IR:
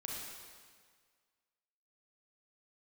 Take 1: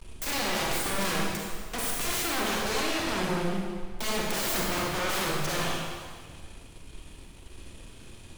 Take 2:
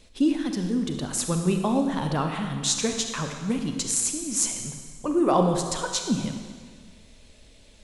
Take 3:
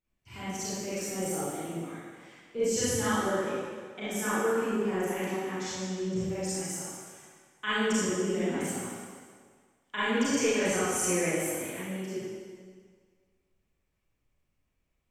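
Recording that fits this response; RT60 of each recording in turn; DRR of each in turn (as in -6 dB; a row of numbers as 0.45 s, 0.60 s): 1; 1.7 s, 1.7 s, 1.7 s; -3.0 dB, 4.5 dB, -12.5 dB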